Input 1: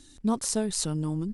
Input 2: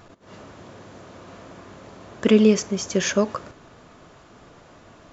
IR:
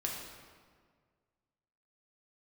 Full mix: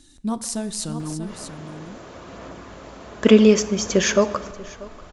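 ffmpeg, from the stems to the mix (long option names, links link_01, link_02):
-filter_complex "[0:a]bandreject=frequency=440:width=12,volume=-1dB,asplit=3[link_01][link_02][link_03];[link_02]volume=-13dB[link_04];[link_03]volume=-7.5dB[link_05];[1:a]asubboost=boost=7.5:cutoff=50,aphaser=in_gain=1:out_gain=1:delay=4.8:decay=0.23:speed=0.69:type=sinusoidal,adelay=1000,volume=2dB,asplit=3[link_06][link_07][link_08];[link_07]volume=-14dB[link_09];[link_08]volume=-20dB[link_10];[2:a]atrim=start_sample=2205[link_11];[link_04][link_09]amix=inputs=2:normalize=0[link_12];[link_12][link_11]afir=irnorm=-1:irlink=0[link_13];[link_05][link_10]amix=inputs=2:normalize=0,aecho=0:1:638:1[link_14];[link_01][link_06][link_13][link_14]amix=inputs=4:normalize=0"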